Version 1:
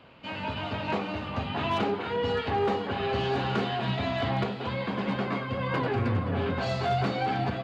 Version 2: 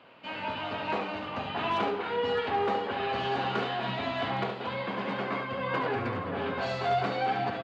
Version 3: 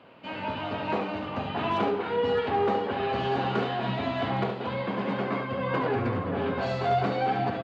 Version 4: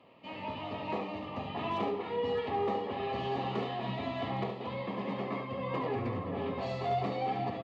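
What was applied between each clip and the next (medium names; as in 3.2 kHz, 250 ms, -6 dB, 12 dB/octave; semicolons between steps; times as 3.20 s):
high-pass 440 Hz 6 dB/octave; treble shelf 4.7 kHz -9 dB; delay 71 ms -7.5 dB; trim +1 dB
tilt shelf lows +4 dB, about 670 Hz; trim +2.5 dB
Butterworth band-stop 1.5 kHz, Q 4.2; trim -6.5 dB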